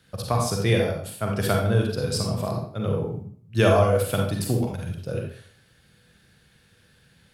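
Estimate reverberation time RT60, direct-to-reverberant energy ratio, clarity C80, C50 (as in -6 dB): 0.50 s, 0.0 dB, 7.5 dB, 2.5 dB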